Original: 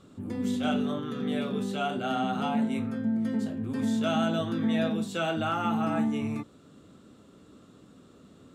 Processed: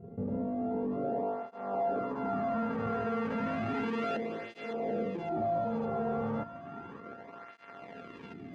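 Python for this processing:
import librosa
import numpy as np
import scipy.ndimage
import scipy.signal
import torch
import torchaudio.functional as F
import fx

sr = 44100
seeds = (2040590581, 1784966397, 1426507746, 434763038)

p1 = np.r_[np.sort(x[:len(x) // 64 * 64].reshape(-1, 64), axis=1).ravel(), x[len(x) // 64 * 64:]]
p2 = fx.over_compress(p1, sr, threshold_db=-33.0, ratio=-1.0)
p3 = p1 + (p2 * 10.0 ** (1.5 / 20.0))
p4 = 10.0 ** (-29.5 / 20.0) * np.tanh(p3 / 10.0 ** (-29.5 / 20.0))
p5 = fx.filter_lfo_lowpass(p4, sr, shape='saw_up', hz=0.24, low_hz=390.0, high_hz=2700.0, q=1.5)
p6 = p5 + fx.echo_wet_highpass(p5, sr, ms=561, feedback_pct=53, hz=1600.0, wet_db=-5.0, dry=0)
y = fx.flanger_cancel(p6, sr, hz=0.33, depth_ms=3.5)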